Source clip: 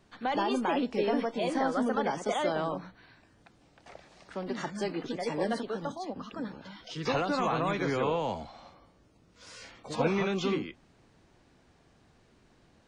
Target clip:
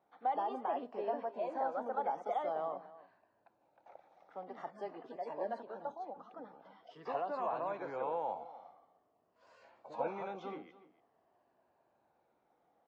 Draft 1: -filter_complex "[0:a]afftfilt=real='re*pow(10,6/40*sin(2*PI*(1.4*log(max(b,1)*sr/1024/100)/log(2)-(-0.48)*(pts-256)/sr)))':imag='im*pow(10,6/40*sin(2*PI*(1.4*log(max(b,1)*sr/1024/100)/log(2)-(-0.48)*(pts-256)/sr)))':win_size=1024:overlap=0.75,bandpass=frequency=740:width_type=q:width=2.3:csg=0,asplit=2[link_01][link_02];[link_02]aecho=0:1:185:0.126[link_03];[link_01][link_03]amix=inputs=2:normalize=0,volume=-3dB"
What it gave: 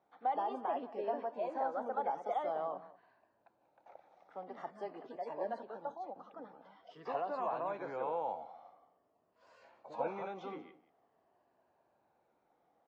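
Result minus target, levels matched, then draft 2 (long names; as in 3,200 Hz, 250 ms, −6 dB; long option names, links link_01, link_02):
echo 105 ms early
-filter_complex "[0:a]afftfilt=real='re*pow(10,6/40*sin(2*PI*(1.4*log(max(b,1)*sr/1024/100)/log(2)-(-0.48)*(pts-256)/sr)))':imag='im*pow(10,6/40*sin(2*PI*(1.4*log(max(b,1)*sr/1024/100)/log(2)-(-0.48)*(pts-256)/sr)))':win_size=1024:overlap=0.75,bandpass=frequency=740:width_type=q:width=2.3:csg=0,asplit=2[link_01][link_02];[link_02]aecho=0:1:290:0.126[link_03];[link_01][link_03]amix=inputs=2:normalize=0,volume=-3dB"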